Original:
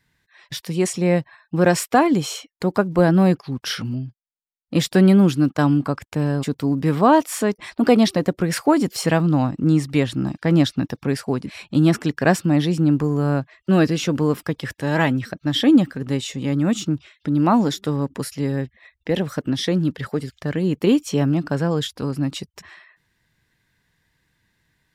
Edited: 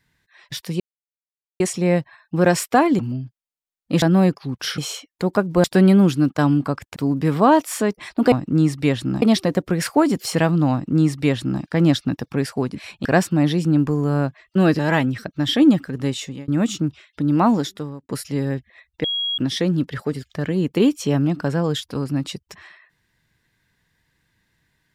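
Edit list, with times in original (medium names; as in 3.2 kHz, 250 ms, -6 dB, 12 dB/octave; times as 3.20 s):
0.80 s: insert silence 0.80 s
2.19–3.05 s: swap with 3.81–4.84 s
6.16–6.57 s: delete
9.43–10.33 s: copy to 7.93 s
11.76–12.18 s: delete
13.92–14.86 s: delete
16.29–16.55 s: fade out
17.59–18.16 s: fade out
19.11–19.45 s: bleep 3.3 kHz -20.5 dBFS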